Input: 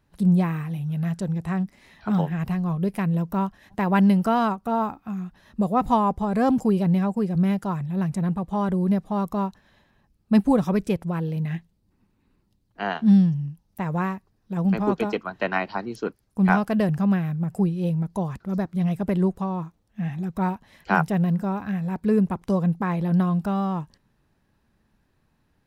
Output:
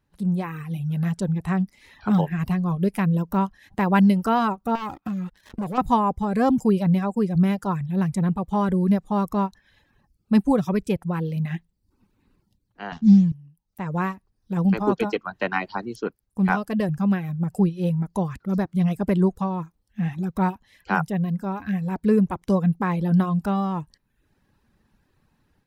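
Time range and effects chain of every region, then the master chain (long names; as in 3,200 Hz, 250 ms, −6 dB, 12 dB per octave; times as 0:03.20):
0:04.75–0:05.78: leveller curve on the samples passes 3 + downward compressor, threshold −29 dBFS
0:12.92–0:13.32: variable-slope delta modulation 32 kbit/s + bass and treble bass +13 dB, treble 0 dB
whole clip: notch filter 660 Hz, Q 12; reverb reduction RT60 0.61 s; automatic gain control gain up to 9 dB; level −5.5 dB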